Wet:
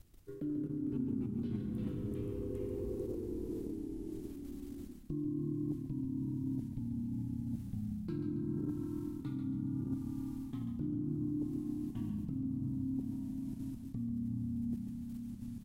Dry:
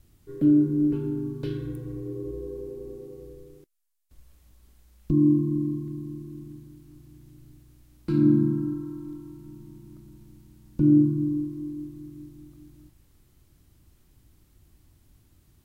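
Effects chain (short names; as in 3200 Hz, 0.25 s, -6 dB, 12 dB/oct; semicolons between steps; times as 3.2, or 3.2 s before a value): level quantiser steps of 14 dB; echoes that change speed 0.173 s, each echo -2 st, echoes 3; reverse; compressor 6:1, threshold -40 dBFS, peak gain reduction 15.5 dB; reverse; frequency-shifting echo 0.139 s, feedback 37%, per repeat -34 Hz, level -8 dB; gain +4 dB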